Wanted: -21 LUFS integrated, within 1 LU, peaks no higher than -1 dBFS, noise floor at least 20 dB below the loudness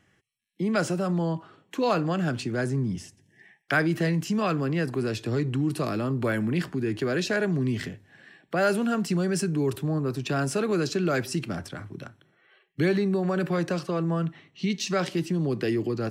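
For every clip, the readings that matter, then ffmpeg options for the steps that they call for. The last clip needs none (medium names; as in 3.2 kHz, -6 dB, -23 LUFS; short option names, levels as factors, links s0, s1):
loudness -27.0 LUFS; peak level -12.0 dBFS; loudness target -21.0 LUFS
-> -af "volume=2"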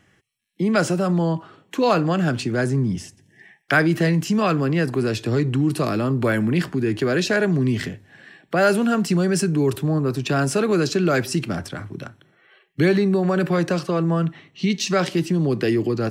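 loudness -21.0 LUFS; peak level -6.0 dBFS; noise floor -61 dBFS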